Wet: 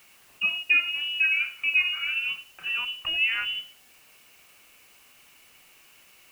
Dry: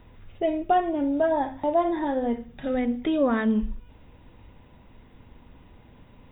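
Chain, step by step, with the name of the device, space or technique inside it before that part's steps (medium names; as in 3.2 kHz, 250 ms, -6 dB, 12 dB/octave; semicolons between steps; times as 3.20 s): scrambled radio voice (band-pass 390–3000 Hz; frequency inversion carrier 3.2 kHz; white noise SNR 28 dB)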